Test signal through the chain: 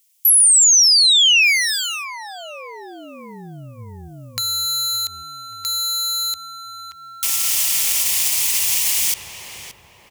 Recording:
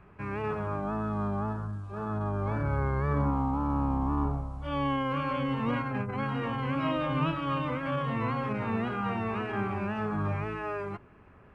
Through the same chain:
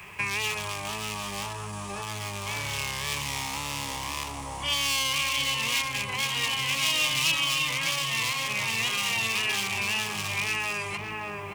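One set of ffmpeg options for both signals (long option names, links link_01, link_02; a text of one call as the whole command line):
ffmpeg -i in.wav -filter_complex "[0:a]equalizer=frequency=1700:width_type=o:width=0.81:gain=3.5,volume=27dB,asoftclip=hard,volume=-27dB,highpass=59,asplit=2[link_01][link_02];[link_02]adelay=574,lowpass=frequency=1200:poles=1,volume=-6.5dB,asplit=2[link_03][link_04];[link_04]adelay=574,lowpass=frequency=1200:poles=1,volume=0.53,asplit=2[link_05][link_06];[link_06]adelay=574,lowpass=frequency=1200:poles=1,volume=0.53,asplit=2[link_07][link_08];[link_08]adelay=574,lowpass=frequency=1200:poles=1,volume=0.53,asplit=2[link_09][link_10];[link_10]adelay=574,lowpass=frequency=1200:poles=1,volume=0.53,asplit=2[link_11][link_12];[link_12]adelay=574,lowpass=frequency=1200:poles=1,volume=0.53,asplit=2[link_13][link_14];[link_14]adelay=574,lowpass=frequency=1200:poles=1,volume=0.53[link_15];[link_01][link_03][link_05][link_07][link_09][link_11][link_13][link_15]amix=inputs=8:normalize=0,acrossover=split=110|2700[link_16][link_17][link_18];[link_16]acompressor=threshold=-44dB:ratio=4[link_19];[link_17]acompressor=threshold=-37dB:ratio=4[link_20];[link_18]acompressor=threshold=-36dB:ratio=4[link_21];[link_19][link_20][link_21]amix=inputs=3:normalize=0,equalizer=frequency=250:width_type=o:width=0.67:gain=-7,equalizer=frequency=1000:width_type=o:width=0.67:gain=9,equalizer=frequency=4000:width_type=o:width=0.67:gain=-8,acompressor=threshold=-37dB:ratio=6,aexciter=amount=15.1:drive=8.1:freq=2300,bandreject=frequency=60:width_type=h:width=6,bandreject=frequency=120:width_type=h:width=6,alimiter=level_in=12dB:limit=-1dB:release=50:level=0:latency=1,volume=-7.5dB" out.wav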